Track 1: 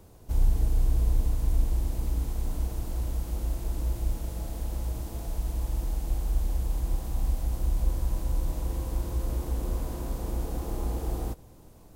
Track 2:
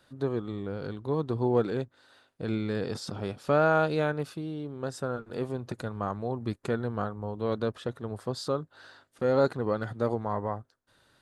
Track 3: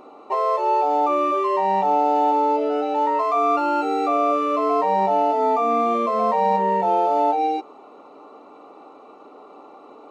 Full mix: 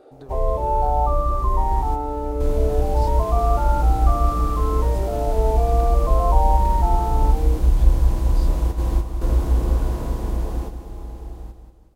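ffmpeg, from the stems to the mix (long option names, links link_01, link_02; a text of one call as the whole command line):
ffmpeg -i stem1.wav -i stem2.wav -i stem3.wav -filter_complex "[0:a]lowpass=frequency=3900:poles=1,dynaudnorm=framelen=310:gausssize=13:maxgain=10.5dB,volume=-1dB,asplit=2[link_01][link_02];[link_02]volume=-8dB[link_03];[1:a]acompressor=threshold=-35dB:ratio=12,volume=-4dB,asplit=2[link_04][link_05];[2:a]lowpass=1000,equalizer=frequency=220:width=1.9:gain=-13,asplit=2[link_06][link_07];[link_07]afreqshift=0.38[link_08];[link_06][link_08]amix=inputs=2:normalize=1,volume=1dB[link_09];[link_05]apad=whole_len=527430[link_10];[link_01][link_10]sidechaingate=range=-33dB:threshold=-58dB:ratio=16:detection=peak[link_11];[link_03]aecho=0:1:184|368|552|736|920:1|0.39|0.152|0.0593|0.0231[link_12];[link_11][link_04][link_09][link_12]amix=inputs=4:normalize=0" out.wav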